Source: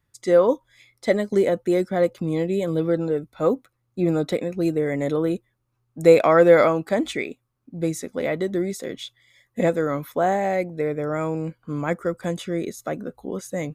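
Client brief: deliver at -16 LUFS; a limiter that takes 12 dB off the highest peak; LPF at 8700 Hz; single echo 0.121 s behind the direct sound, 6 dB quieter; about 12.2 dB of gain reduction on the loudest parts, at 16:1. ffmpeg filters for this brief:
-af "lowpass=8.7k,acompressor=threshold=-20dB:ratio=16,alimiter=limit=-24dB:level=0:latency=1,aecho=1:1:121:0.501,volume=16.5dB"

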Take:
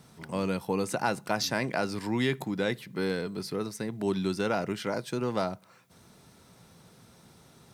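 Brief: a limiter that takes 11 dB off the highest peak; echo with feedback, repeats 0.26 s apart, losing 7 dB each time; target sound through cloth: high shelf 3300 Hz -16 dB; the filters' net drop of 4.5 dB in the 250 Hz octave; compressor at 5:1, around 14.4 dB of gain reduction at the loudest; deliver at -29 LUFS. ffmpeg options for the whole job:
-af "equalizer=f=250:t=o:g=-6,acompressor=threshold=-41dB:ratio=5,alimiter=level_in=11.5dB:limit=-24dB:level=0:latency=1,volume=-11.5dB,highshelf=f=3.3k:g=-16,aecho=1:1:260|520|780|1040|1300:0.447|0.201|0.0905|0.0407|0.0183,volume=19.5dB"

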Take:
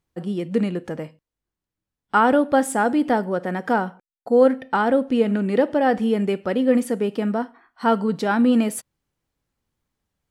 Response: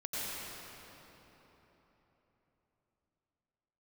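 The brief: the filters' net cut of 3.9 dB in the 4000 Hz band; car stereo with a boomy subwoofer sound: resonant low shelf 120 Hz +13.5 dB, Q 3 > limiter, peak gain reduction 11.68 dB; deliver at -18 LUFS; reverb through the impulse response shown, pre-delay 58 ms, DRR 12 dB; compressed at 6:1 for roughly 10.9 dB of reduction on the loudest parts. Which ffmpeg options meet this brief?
-filter_complex "[0:a]equalizer=f=4k:t=o:g=-6,acompressor=threshold=-23dB:ratio=6,asplit=2[a][b];[1:a]atrim=start_sample=2205,adelay=58[c];[b][c]afir=irnorm=-1:irlink=0,volume=-16.5dB[d];[a][d]amix=inputs=2:normalize=0,lowshelf=f=120:t=q:w=3:g=13.5,volume=16.5dB,alimiter=limit=-8.5dB:level=0:latency=1"

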